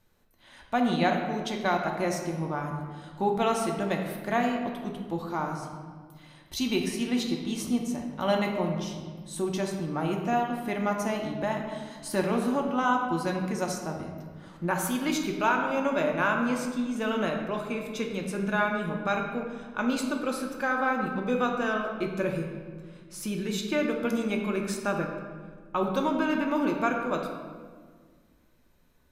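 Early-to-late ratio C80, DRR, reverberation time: 5.5 dB, 1.0 dB, 1.6 s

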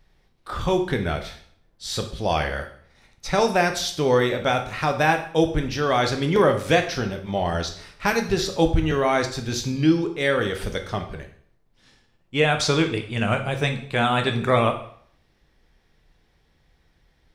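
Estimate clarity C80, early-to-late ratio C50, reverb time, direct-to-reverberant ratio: 14.0 dB, 10.0 dB, 0.55 s, 5.0 dB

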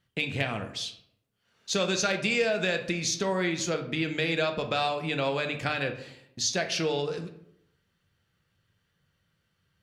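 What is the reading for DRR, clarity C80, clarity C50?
5.0 dB, 14.0 dB, 10.0 dB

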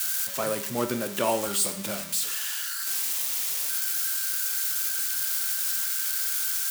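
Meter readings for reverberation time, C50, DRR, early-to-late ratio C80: 0.70 s, 11.0 dB, 7.5 dB, 14.0 dB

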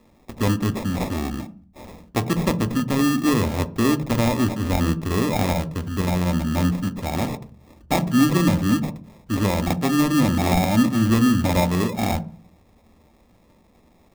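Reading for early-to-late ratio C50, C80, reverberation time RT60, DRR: 18.5 dB, 22.5 dB, 0.40 s, 11.5 dB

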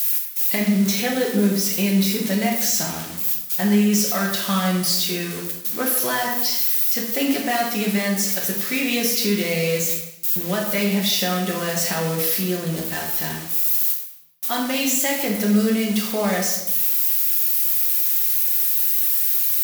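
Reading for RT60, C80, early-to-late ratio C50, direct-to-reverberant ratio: 0.90 s, 7.0 dB, 4.0 dB, -2.0 dB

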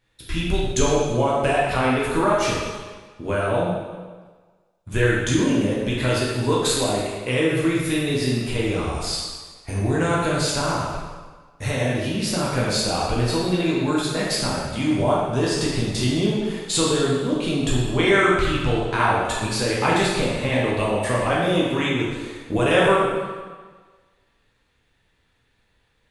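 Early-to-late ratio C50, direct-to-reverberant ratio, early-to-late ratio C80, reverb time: -1.0 dB, -6.0 dB, 1.5 dB, 1.4 s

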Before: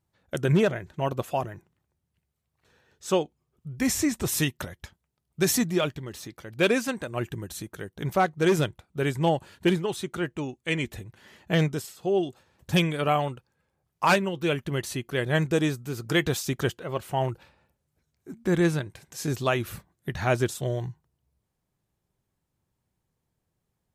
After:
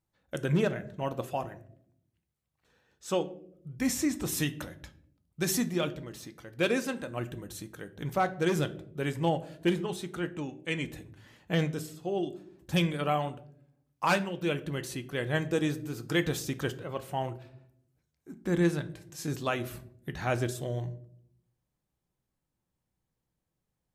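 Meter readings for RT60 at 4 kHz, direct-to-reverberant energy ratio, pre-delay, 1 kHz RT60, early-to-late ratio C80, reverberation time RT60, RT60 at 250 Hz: 0.35 s, 10.0 dB, 3 ms, 0.50 s, 20.0 dB, 0.65 s, 1.1 s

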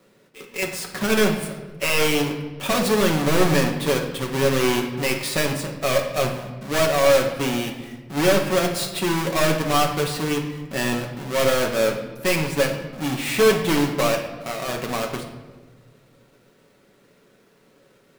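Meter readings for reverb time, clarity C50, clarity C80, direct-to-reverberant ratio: 1.3 s, 7.0 dB, 9.5 dB, 1.0 dB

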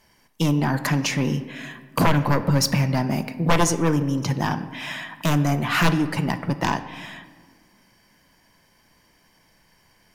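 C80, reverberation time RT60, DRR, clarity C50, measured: 14.0 dB, 1.6 s, 10.0 dB, 12.5 dB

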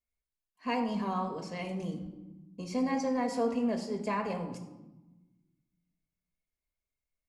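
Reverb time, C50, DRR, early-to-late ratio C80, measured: 1.1 s, 8.5 dB, 2.5 dB, 10.5 dB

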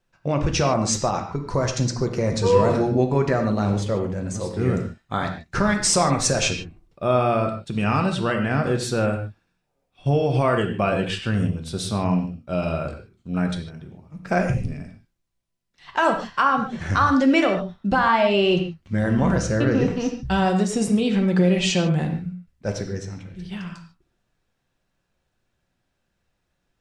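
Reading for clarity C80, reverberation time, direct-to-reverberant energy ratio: 9.5 dB, no single decay rate, 3.5 dB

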